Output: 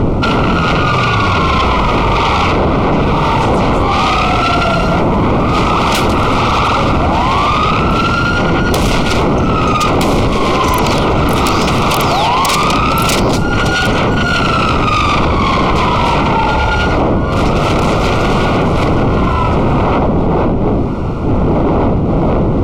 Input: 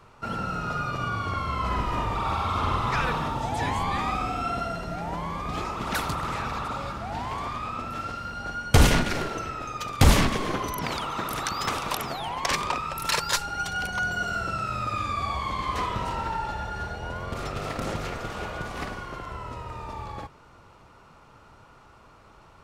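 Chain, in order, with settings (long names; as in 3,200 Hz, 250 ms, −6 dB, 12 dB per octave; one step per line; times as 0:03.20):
wind on the microphone 290 Hz −23 dBFS
high-shelf EQ 5,000 Hz −11.5 dB
downward compressor 5 to 1, threshold −29 dBFS, peak gain reduction 22.5 dB
sine wavefolder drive 17 dB, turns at −14 dBFS
Butterworth band-reject 1,700 Hz, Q 3
level +6 dB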